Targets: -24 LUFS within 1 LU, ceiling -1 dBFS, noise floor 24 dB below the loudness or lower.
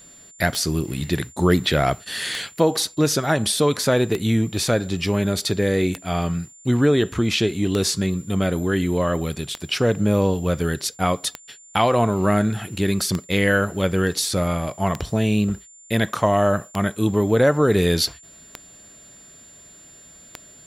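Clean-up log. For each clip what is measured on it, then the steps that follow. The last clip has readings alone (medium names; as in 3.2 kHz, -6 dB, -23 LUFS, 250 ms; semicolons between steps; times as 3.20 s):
clicks found 12; steady tone 7.2 kHz; tone level -45 dBFS; loudness -21.5 LUFS; peak level -4.5 dBFS; loudness target -24.0 LUFS
-> de-click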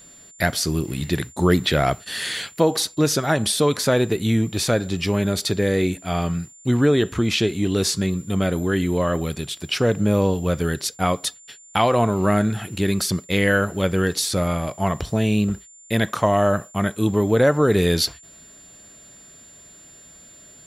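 clicks found 0; steady tone 7.2 kHz; tone level -45 dBFS
-> band-stop 7.2 kHz, Q 30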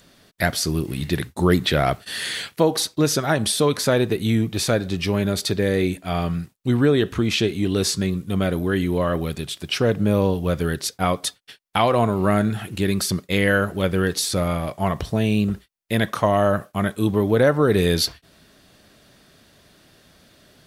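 steady tone not found; loudness -21.5 LUFS; peak level -4.5 dBFS; loudness target -24.0 LUFS
-> trim -2.5 dB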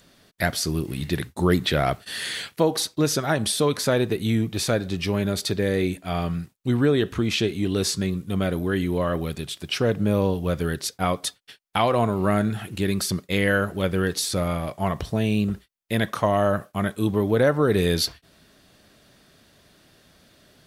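loudness -24.0 LUFS; peak level -7.0 dBFS; noise floor -60 dBFS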